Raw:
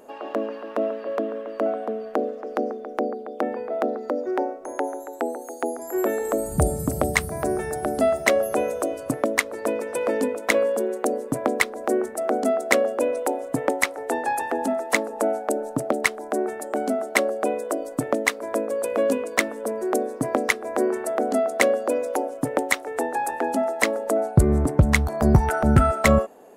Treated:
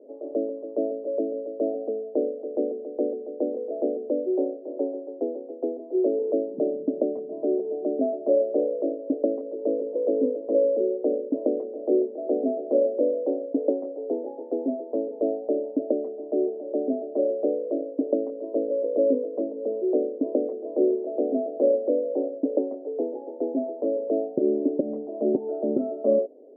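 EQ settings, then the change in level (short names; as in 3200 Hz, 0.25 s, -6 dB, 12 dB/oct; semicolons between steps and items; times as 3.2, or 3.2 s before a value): elliptic band-pass 270–600 Hz, stop band 70 dB; air absorption 370 m; tilt -2 dB/oct; 0.0 dB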